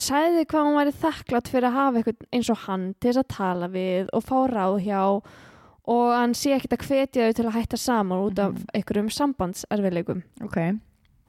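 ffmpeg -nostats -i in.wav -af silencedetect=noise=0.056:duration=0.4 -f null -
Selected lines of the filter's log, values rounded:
silence_start: 5.19
silence_end: 5.88 | silence_duration: 0.69
silence_start: 10.76
silence_end: 11.28 | silence_duration: 0.52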